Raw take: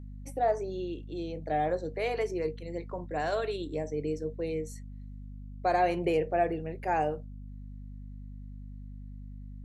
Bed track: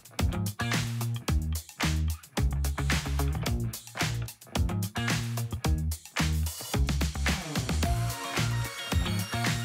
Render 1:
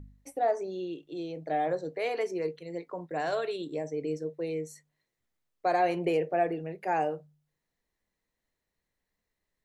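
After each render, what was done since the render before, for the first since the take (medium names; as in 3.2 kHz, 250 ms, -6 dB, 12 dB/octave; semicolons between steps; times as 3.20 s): de-hum 50 Hz, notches 5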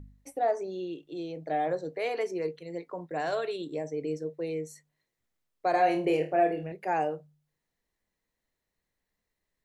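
5.71–6.72 s: flutter echo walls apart 4.5 m, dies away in 0.28 s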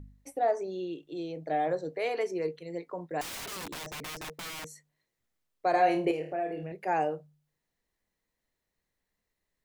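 3.21–4.65 s: integer overflow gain 35 dB; 6.11–6.76 s: compression 2:1, threshold -35 dBFS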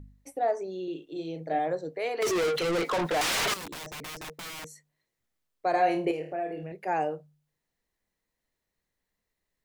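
0.84–1.59 s: doubling 37 ms -4 dB; 2.22–3.54 s: overdrive pedal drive 40 dB, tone 6.5 kHz, clips at -20.5 dBFS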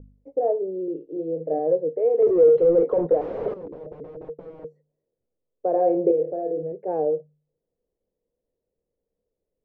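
resonant low-pass 490 Hz, resonance Q 4.9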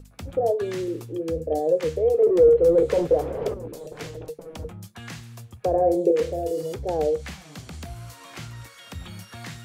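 add bed track -9.5 dB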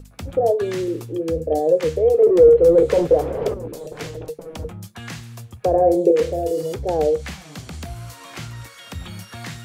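trim +4.5 dB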